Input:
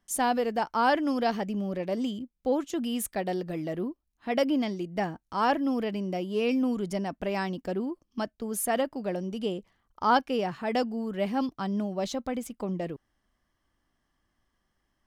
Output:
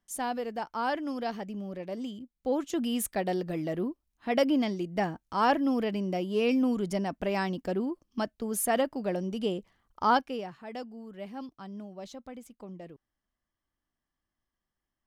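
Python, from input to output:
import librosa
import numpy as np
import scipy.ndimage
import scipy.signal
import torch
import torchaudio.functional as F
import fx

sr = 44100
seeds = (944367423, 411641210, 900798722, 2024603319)

y = fx.gain(x, sr, db=fx.line((2.2, -6.5), (2.73, 0.5), (10.05, 0.5), (10.58, -12.0)))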